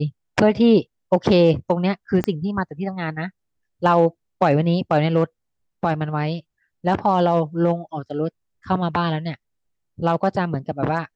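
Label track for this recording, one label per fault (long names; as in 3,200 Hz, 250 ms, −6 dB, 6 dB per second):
2.240000	2.240000	click −10 dBFS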